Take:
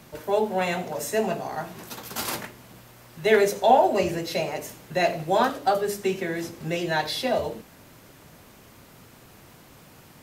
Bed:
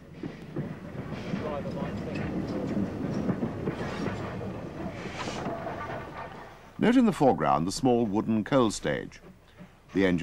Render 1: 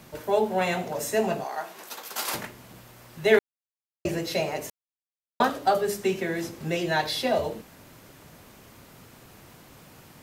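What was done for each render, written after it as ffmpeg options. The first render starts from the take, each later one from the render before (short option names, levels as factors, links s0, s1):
-filter_complex "[0:a]asettb=1/sr,asplit=3[s0][s1][s2];[s0]atrim=end=1.444[s3];[s1]atrim=start=1.44:end=2.34,asetpts=PTS-STARTPTS,afade=t=in:d=0.004:c=qsin,afade=t=out:st=0.896:d=0.004:c=qsin,highpass=480[s4];[s2]atrim=start=2.336[s5];[s3][s4]acrossfade=d=0.004:c1=hsin:c2=qsin[s6];[s6][s5]acrossfade=d=0.004:c1=qsin:c2=hsin,asplit=5[s7][s8][s9][s10][s11];[s7]atrim=end=3.39,asetpts=PTS-STARTPTS,afade=t=out:st=3.386:d=0.004:c=hsin[s12];[s8]atrim=start=3.39:end=4.05,asetpts=PTS-STARTPTS,volume=0[s13];[s9]atrim=start=4.05:end=4.7,asetpts=PTS-STARTPTS,afade=t=in:d=0.004:c=hsin,afade=t=out:st=0.646:d=0.004:c=hsin[s14];[s10]atrim=start=4.7:end=5.4,asetpts=PTS-STARTPTS,volume=0[s15];[s11]atrim=start=5.4,asetpts=PTS-STARTPTS,afade=t=in:d=0.004:c=hsin[s16];[s12][s13][s14][s15][s16]concat=n=5:v=0:a=1"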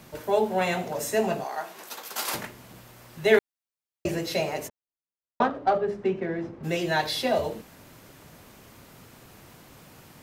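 -filter_complex "[0:a]asplit=3[s0][s1][s2];[s0]afade=t=out:st=4.67:d=0.02[s3];[s1]adynamicsmooth=sensitivity=0.5:basefreq=1500,afade=t=in:st=4.67:d=0.02,afade=t=out:st=6.63:d=0.02[s4];[s2]afade=t=in:st=6.63:d=0.02[s5];[s3][s4][s5]amix=inputs=3:normalize=0"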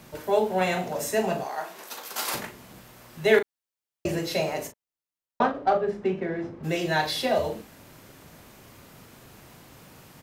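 -filter_complex "[0:a]asplit=2[s0][s1];[s1]adelay=38,volume=0.355[s2];[s0][s2]amix=inputs=2:normalize=0"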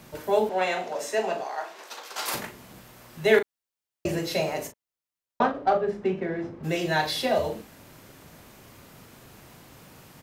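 -filter_complex "[0:a]asettb=1/sr,asplit=3[s0][s1][s2];[s0]atrim=end=0.494[s3];[s1]atrim=start=0.49:end=2.26,asetpts=PTS-STARTPTS,afade=t=in:d=0.004:c=qsin,afade=t=out:st=1.766:d=0.004:c=qsin,acrossover=split=290 7500:gain=0.1 1 0.2[s4][s5][s6];[s4][s5][s6]amix=inputs=3:normalize=0[s7];[s2]atrim=start=2.256[s8];[s3][s7]acrossfade=d=0.004:c1=hsin:c2=qsin[s9];[s9][s8]acrossfade=d=0.004:c1=qsin:c2=hsin"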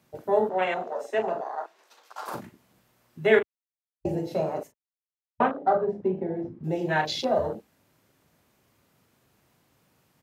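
-af "afwtdn=0.0282,highpass=52"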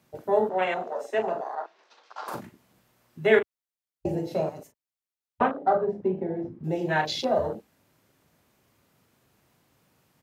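-filter_complex "[0:a]asettb=1/sr,asplit=3[s0][s1][s2];[s0]atrim=end=1.554[s3];[s1]atrim=start=1.55:end=2.28,asetpts=PTS-STARTPTS,afade=t=in:d=0.004:c=qsin,afade=t=out:st=0.726:d=0.004:c=qsin,lowpass=f=5600:w=0.5412,lowpass=f=5600:w=1.3066[s4];[s2]atrim=start=2.276[s5];[s3][s4]acrossfade=d=0.004:c1=hsin:c2=qsin[s6];[s6][s5]acrossfade=d=0.004:c1=qsin:c2=hsin,asettb=1/sr,asplit=3[s7][s8][s9];[s7]atrim=end=4.494[s10];[s8]atrim=start=4.49:end=5.41,asetpts=PTS-STARTPTS,afade=t=in:d=0.004:c=qsin,afade=t=out:st=0.916:d=0.004:c=qsin,acrossover=split=220|3000[s11][s12][s13];[s12]acompressor=threshold=0.00562:ratio=3:attack=3.2:release=140:knee=2.83:detection=peak[s14];[s11][s14][s13]amix=inputs=3:normalize=0[s15];[s9]atrim=start=5.406[s16];[s10][s15]acrossfade=d=0.004:c1=hsin:c2=qsin[s17];[s17][s16]acrossfade=d=0.004:c1=qsin:c2=hsin"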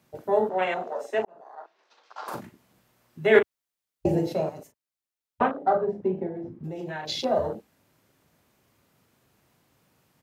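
-filter_complex "[0:a]asettb=1/sr,asplit=3[s0][s1][s2];[s0]atrim=end=3.354[s3];[s1]atrim=start=3.35:end=4.33,asetpts=PTS-STARTPTS,afade=t=in:d=0.004:c=qsin,afade=t=out:st=0.976:d=0.004:c=qsin,acontrast=26[s4];[s2]atrim=start=4.326[s5];[s3][s4]acrossfade=d=0.004:c1=hsin:c2=qsin[s6];[s6][s5]acrossfade=d=0.004:c1=qsin:c2=hsin,asettb=1/sr,asplit=3[s7][s8][s9];[s7]atrim=end=6.274[s10];[s8]atrim=start=6.27:end=7.09,asetpts=PTS-STARTPTS,afade=t=in:d=0.004:c=qsin,afade=t=out:st=0.816:d=0.004:c=qsin,acompressor=threshold=0.0282:ratio=6:attack=3.2:release=140:knee=1:detection=peak[s11];[s9]atrim=start=7.086[s12];[s10][s11]acrossfade=d=0.004:c1=hsin:c2=qsin[s13];[s13][s12]acrossfade=d=0.004:c1=qsin:c2=hsin,asplit=2[s14][s15];[s14]atrim=end=1.25,asetpts=PTS-STARTPTS,afade=t=out:st=1.246:d=0.004:c=hsin[s16];[s15]atrim=start=1.25,asetpts=PTS-STARTPTS,afade=t=in:d=1.03[s17];[s16][s17]concat=n=2:v=0:a=1"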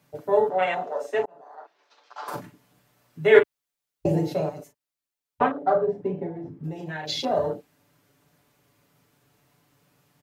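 -af "aecho=1:1:6.9:0.62"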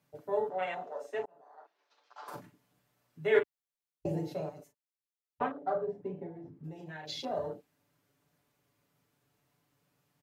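-af "volume=0.282"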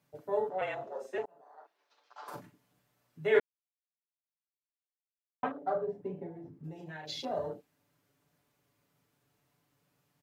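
-filter_complex "[0:a]asettb=1/sr,asplit=3[s0][s1][s2];[s0]atrim=end=0.614[s3];[s1]atrim=start=0.61:end=1.18,asetpts=PTS-STARTPTS,afade=t=in:d=0.004:c=qsin,afade=t=out:st=0.566:d=0.004:c=qsin,afreqshift=-41[s4];[s2]atrim=start=1.176[s5];[s3][s4]acrossfade=d=0.004:c1=hsin:c2=qsin[s6];[s6][s5]acrossfade=d=0.004:c1=qsin:c2=hsin,asplit=3[s7][s8][s9];[s7]atrim=end=3.4,asetpts=PTS-STARTPTS,afade=t=out:st=3.396:d=0.004:c=hsin[s10];[s8]atrim=start=3.4:end=5.43,asetpts=PTS-STARTPTS,volume=0[s11];[s9]atrim=start=5.43,asetpts=PTS-STARTPTS,afade=t=in:d=0.004:c=hsin[s12];[s10][s11][s12]concat=n=3:v=0:a=1"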